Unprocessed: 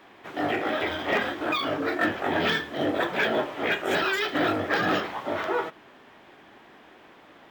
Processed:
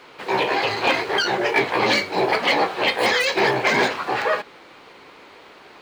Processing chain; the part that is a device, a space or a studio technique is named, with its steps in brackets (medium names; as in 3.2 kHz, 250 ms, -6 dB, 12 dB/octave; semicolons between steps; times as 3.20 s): nightcore (tape speed +29%); trim +6 dB